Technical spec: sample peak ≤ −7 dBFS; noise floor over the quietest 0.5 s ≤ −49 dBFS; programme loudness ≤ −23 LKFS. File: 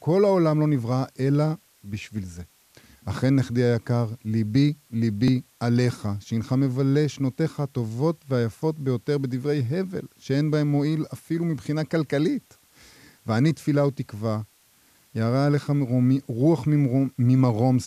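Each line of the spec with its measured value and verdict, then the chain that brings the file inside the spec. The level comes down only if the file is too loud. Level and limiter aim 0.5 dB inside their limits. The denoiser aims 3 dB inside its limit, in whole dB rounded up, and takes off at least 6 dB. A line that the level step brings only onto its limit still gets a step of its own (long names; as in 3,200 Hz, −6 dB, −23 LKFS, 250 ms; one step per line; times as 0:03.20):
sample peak −9.0 dBFS: in spec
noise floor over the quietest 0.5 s −60 dBFS: in spec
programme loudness −24.0 LKFS: in spec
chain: no processing needed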